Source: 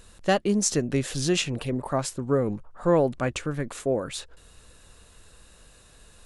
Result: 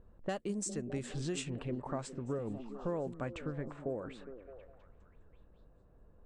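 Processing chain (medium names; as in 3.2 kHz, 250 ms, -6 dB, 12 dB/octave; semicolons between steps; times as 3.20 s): level-controlled noise filter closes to 690 Hz, open at -19 dBFS; peaking EQ 8 kHz +14 dB 0.3 oct; compression 4:1, threshold -28 dBFS, peak gain reduction 12.5 dB; treble shelf 3.1 kHz -5 dB, from 2.08 s -11 dB; repeats whose band climbs or falls 205 ms, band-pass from 220 Hz, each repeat 0.7 oct, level -7 dB; trim -6.5 dB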